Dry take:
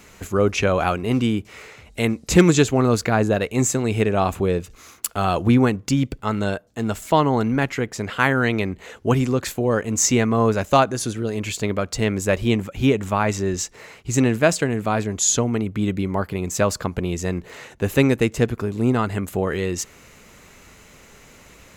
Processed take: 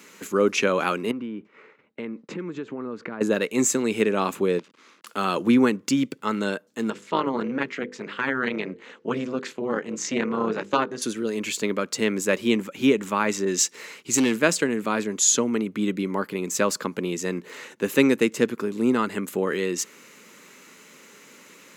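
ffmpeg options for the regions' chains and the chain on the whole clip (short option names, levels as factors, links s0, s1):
-filter_complex "[0:a]asettb=1/sr,asplit=3[s0][s1][s2];[s0]atrim=end=1.114[s3];[s1]atrim=start=1.11:end=3.21,asetpts=PTS-STARTPTS,afade=t=in:d=0.004:c=qsin,afade=t=out:st=2.096:d=0.004:c=qsin,lowpass=1700,agate=range=0.0224:threshold=0.01:ratio=3:release=100:detection=peak,acompressor=threshold=0.0501:ratio=12:attack=3.2:release=140:knee=1:detection=peak[s4];[s2]atrim=start=3.206[s5];[s3][s4]acrossfade=d=0.004:c1=hsin:c2=qsin[s6];[s6][s5]acrossfade=d=0.004:c1=qsin:c2=hsin,asettb=1/sr,asplit=3[s7][s8][s9];[s7]atrim=end=4.594[s10];[s8]atrim=start=4.59:end=5.07,asetpts=PTS-STARTPTS,afade=t=in:d=0.004:c=qsin,afade=t=out:st=0.476:d=0.004:c=qsin,acompressor=threshold=0.02:ratio=2.5:attack=3.2:release=140:knee=1:detection=peak,acrusher=bits=6:dc=4:mix=0:aa=0.000001,highpass=120,lowpass=3700[s11];[s9]atrim=start=5.066[s12];[s10][s11]acrossfade=d=0.004:c1=hsin:c2=qsin[s13];[s13][s12]acrossfade=d=0.004:c1=qsin:c2=hsin,asettb=1/sr,asplit=3[s14][s15][s16];[s14]atrim=end=6.904[s17];[s15]atrim=start=6.9:end=11.02,asetpts=PTS-STARTPTS,afade=t=in:d=0.004:c=qsin,afade=t=out:st=4.116:d=0.004:c=qsin,lowpass=4300,tremolo=f=260:d=0.857,bandreject=f=50:t=h:w=6,bandreject=f=100:t=h:w=6,bandreject=f=150:t=h:w=6,bandreject=f=200:t=h:w=6,bandreject=f=250:t=h:w=6,bandreject=f=300:t=h:w=6,bandreject=f=350:t=h:w=6,bandreject=f=400:t=h:w=6,bandreject=f=450:t=h:w=6,bandreject=f=500:t=h:w=6[s18];[s16]atrim=start=11.016[s19];[s17][s18]acrossfade=d=0.004:c1=hsin:c2=qsin[s20];[s20][s19]acrossfade=d=0.004:c1=qsin:c2=hsin,asettb=1/sr,asplit=3[s21][s22][s23];[s21]atrim=end=13.454[s24];[s22]atrim=start=13.45:end=14.34,asetpts=PTS-STARTPTS,afade=t=in:d=0.004:c=qsin,afade=t=out:st=0.886:d=0.004:c=qsin,asoftclip=type=hard:threshold=0.188,adynamicequalizer=threshold=0.00794:dfrequency=2000:dqfactor=0.7:tfrequency=2000:tqfactor=0.7:attack=5:release=100:ratio=0.375:range=3:mode=boostabove:tftype=highshelf[s25];[s23]atrim=start=14.336[s26];[s24][s25]acrossfade=d=0.004:c1=hsin:c2=qsin[s27];[s27][s26]acrossfade=d=0.004:c1=qsin:c2=hsin,highpass=f=200:w=0.5412,highpass=f=200:w=1.3066,equalizer=f=710:t=o:w=0.36:g=-12"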